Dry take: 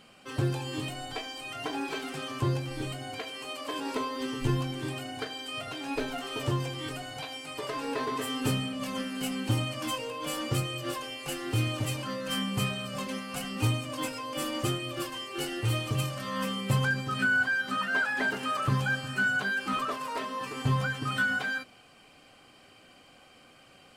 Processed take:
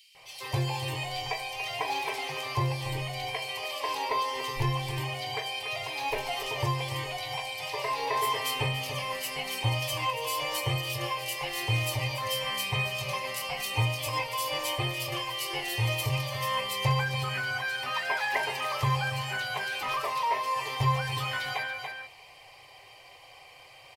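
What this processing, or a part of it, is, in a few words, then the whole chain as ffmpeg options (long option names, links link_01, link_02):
ducked delay: -filter_complex "[0:a]firequalizer=gain_entry='entry(140,0);entry(210,-25);entry(390,-2);entry(970,10);entry(1400,-11);entry(2000,11);entry(2900,6);entry(5000,7);entry(7900,-1);entry(12000,7)':delay=0.05:min_phase=1,acrossover=split=3000[link_01][link_02];[link_01]adelay=150[link_03];[link_03][link_02]amix=inputs=2:normalize=0,asplit=3[link_04][link_05][link_06];[link_05]adelay=286,volume=-5.5dB[link_07];[link_06]apad=whole_len=1080303[link_08];[link_07][link_08]sidechaincompress=threshold=-40dB:ratio=8:attack=44:release=101[link_09];[link_04][link_09]amix=inputs=2:normalize=0"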